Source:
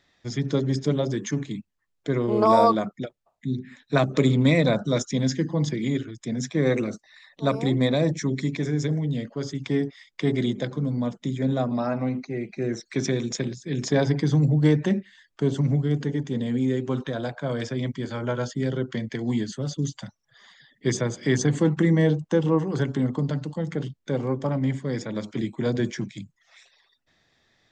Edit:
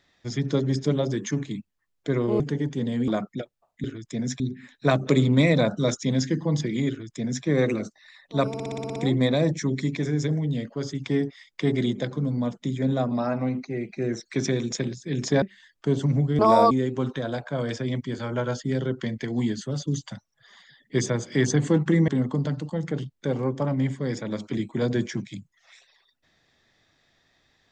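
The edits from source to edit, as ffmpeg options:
-filter_complex "[0:a]asplit=17[a][b][c][d][e][f][g][h][i][j][k][l][m][n][o][p][q];[a]atrim=end=2.402[r];[b]atrim=start=15.938:end=16.622[s];[c]atrim=start=2.718:end=3.482[t];[d]atrim=start=5.968:end=6.532[u];[e]atrim=start=3.478:end=7.622[v];[f]atrim=start=7.558:end=7.622[w];[g]atrim=start=7.558:end=7.622[x];[h]atrim=start=7.558:end=7.622[y];[i]atrim=start=7.558:end=7.622[z];[j]atrim=start=7.558:end=7.622[aa];[k]atrim=start=7.558:end=7.622[ab];[l]atrim=start=7.558:end=7.622[ac];[m]atrim=start=7.558:end=14.022[ad];[n]atrim=start=14.968:end=15.942[ae];[o]atrim=start=2.398:end=2.722[af];[p]atrim=start=16.618:end=21.992[ag];[q]atrim=start=22.918[ah];[r][s]acrossfade=d=0.004:c1=hsin:c2=hsin[ai];[ai][t]acrossfade=d=0.004:c1=hsin:c2=hsin[aj];[aj][u]acrossfade=d=0.004:c1=hsin:c2=hsin[ak];[ak][v]acrossfade=d=0.004:c1=hsin:c2=hsin[al];[al][w]acrossfade=d=0.004:c1=hsin:c2=hsin[am];[am][x]acrossfade=d=0.004:c1=hsin:c2=hsin[an];[an][y]acrossfade=d=0.004:c1=hsin:c2=hsin[ao];[ao][z]acrossfade=d=0.004:c1=hsin:c2=hsin[ap];[ap][aa]acrossfade=d=0.004:c1=hsin:c2=hsin[aq];[aq][ab]acrossfade=d=0.004:c1=hsin:c2=hsin[ar];[ar][ac]acrossfade=d=0.004:c1=hsin:c2=hsin[as];[as][ad]acrossfade=d=0.004:c1=hsin:c2=hsin[at];[at][ae]acrossfade=d=0.004:c1=hsin:c2=hsin[au];[au][af]acrossfade=d=0.004:c1=hsin:c2=hsin[av];[av][ag]acrossfade=d=0.004:c1=hsin:c2=hsin[aw];[aw][ah]acrossfade=d=0.004:c1=hsin:c2=hsin"

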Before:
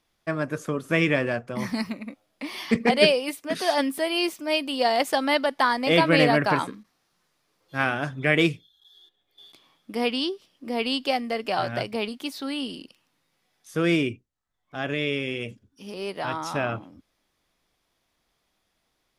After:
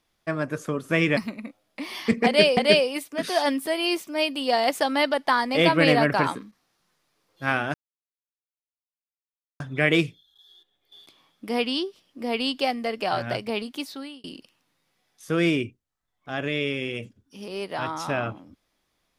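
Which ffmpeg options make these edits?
-filter_complex "[0:a]asplit=5[a][b][c][d][e];[a]atrim=end=1.172[f];[b]atrim=start=1.798:end=3.202[g];[c]atrim=start=2.888:end=8.06,asetpts=PTS-STARTPTS,afade=t=out:st=5.168:d=0.004:c=hsin,apad=pad_dur=1.86[h];[d]atrim=start=8.06:end=12.7,asetpts=PTS-STARTPTS,afade=t=in:d=0.004:c=hsin,afade=t=out:st=4.21:d=0.43[i];[e]atrim=start=12.7,asetpts=PTS-STARTPTS,afade=t=in:d=0.004:c=hsin[j];[f][g]acrossfade=d=0.004:c1=hsin:c2=hsin[k];[h][i][j]concat=n=3:v=0:a=1[l];[k][l]acrossfade=d=0.004:c1=hsin:c2=hsin"

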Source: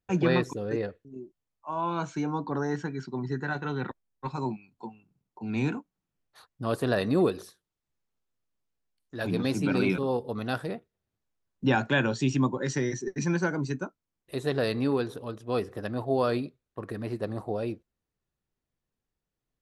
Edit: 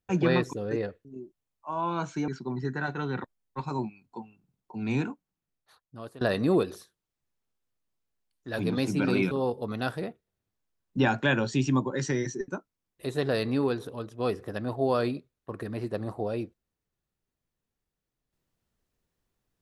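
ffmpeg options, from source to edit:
-filter_complex "[0:a]asplit=4[a][b][c][d];[a]atrim=end=2.282[e];[b]atrim=start=2.948:end=6.88,asetpts=PTS-STARTPTS,afade=t=out:st=2.712:d=1.22:silence=0.1[f];[c]atrim=start=6.88:end=13.152,asetpts=PTS-STARTPTS,afade=t=in:d=0.004:c=hsin:silence=0.1[g];[d]atrim=start=13.768[h];[f][g]concat=n=2:v=0:a=1[i];[e][i]acrossfade=d=0.004:c1=hsin:c2=hsin[j];[j][h]acrossfade=d=0.004:c1=hsin:c2=hsin"

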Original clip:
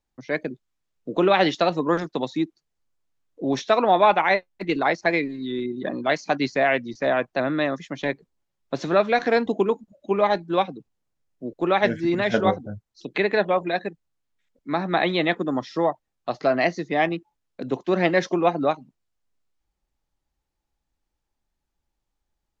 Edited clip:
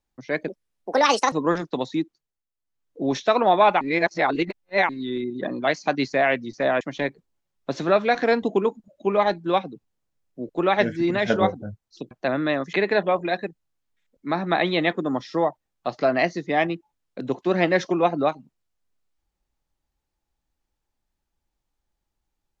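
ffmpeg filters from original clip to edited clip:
-filter_complex "[0:a]asplit=10[a][b][c][d][e][f][g][h][i][j];[a]atrim=end=0.484[k];[b]atrim=start=0.48:end=1.74,asetpts=PTS-STARTPTS,asetrate=66150,aresample=44100[l];[c]atrim=start=1.736:end=2.85,asetpts=PTS-STARTPTS,afade=t=out:st=0.634:d=0.48:silence=0.188365[m];[d]atrim=start=2.85:end=2.97,asetpts=PTS-STARTPTS,volume=-14.5dB[n];[e]atrim=start=2.97:end=4.232,asetpts=PTS-STARTPTS,afade=t=in:d=0.48:silence=0.188365[o];[f]atrim=start=4.228:end=5.312,asetpts=PTS-STARTPTS,areverse[p];[g]atrim=start=5.308:end=7.232[q];[h]atrim=start=7.848:end=13.152[r];[i]atrim=start=7.228:end=7.852[s];[j]atrim=start=13.148[t];[k][l]acrossfade=d=0.004:c1=hsin:c2=hsin[u];[m][n][o]concat=n=3:v=0:a=1[v];[u][v]acrossfade=d=0.004:c1=hsin:c2=hsin[w];[w][p]acrossfade=d=0.004:c1=hsin:c2=hsin[x];[x][q]acrossfade=d=0.004:c1=hsin:c2=hsin[y];[y][r]acrossfade=d=0.004:c1=hsin:c2=hsin[z];[z][s]acrossfade=d=0.004:c1=hsin:c2=hsin[aa];[aa][t]acrossfade=d=0.004:c1=hsin:c2=hsin"

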